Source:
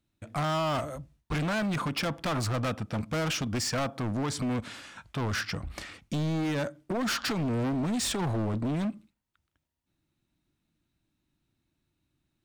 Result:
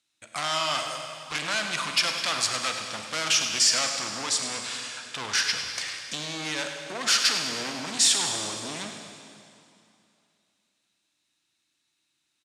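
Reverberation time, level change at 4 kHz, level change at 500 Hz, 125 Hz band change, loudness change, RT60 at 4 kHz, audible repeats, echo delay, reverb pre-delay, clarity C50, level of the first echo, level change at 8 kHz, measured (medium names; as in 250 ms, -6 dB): 2.7 s, +12.0 dB, -3.5 dB, -15.0 dB, +5.0 dB, 2.5 s, 2, 102 ms, 25 ms, 4.0 dB, -11.5 dB, +13.0 dB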